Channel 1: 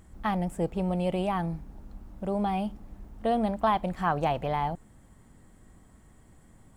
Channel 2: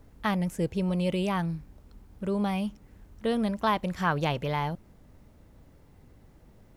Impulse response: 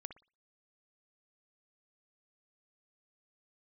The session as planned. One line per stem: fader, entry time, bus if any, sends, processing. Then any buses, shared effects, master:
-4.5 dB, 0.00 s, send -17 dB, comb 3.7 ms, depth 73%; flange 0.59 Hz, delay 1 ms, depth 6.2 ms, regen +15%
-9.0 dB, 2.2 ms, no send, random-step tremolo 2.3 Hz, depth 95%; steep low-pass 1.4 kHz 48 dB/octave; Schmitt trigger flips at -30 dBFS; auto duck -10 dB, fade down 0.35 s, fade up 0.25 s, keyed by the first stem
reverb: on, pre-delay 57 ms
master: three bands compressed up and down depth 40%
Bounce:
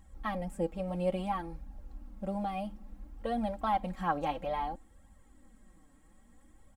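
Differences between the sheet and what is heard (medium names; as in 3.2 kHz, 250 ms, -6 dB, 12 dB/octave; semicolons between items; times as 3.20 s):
stem 2 -9.0 dB -> -17.5 dB; master: missing three bands compressed up and down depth 40%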